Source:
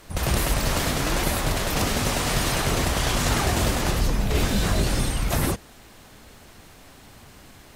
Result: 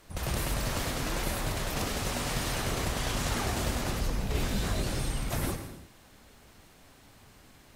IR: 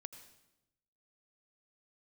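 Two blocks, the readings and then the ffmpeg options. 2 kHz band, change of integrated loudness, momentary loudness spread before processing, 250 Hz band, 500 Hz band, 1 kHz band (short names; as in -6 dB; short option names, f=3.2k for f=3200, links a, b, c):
-8.0 dB, -8.0 dB, 3 LU, -8.0 dB, -8.0 dB, -8.0 dB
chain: -filter_complex "[1:a]atrim=start_sample=2205,afade=t=out:st=0.39:d=0.01,atrim=end_sample=17640,asetrate=40131,aresample=44100[a];[0:a][a]afir=irnorm=-1:irlink=0,volume=-3.5dB"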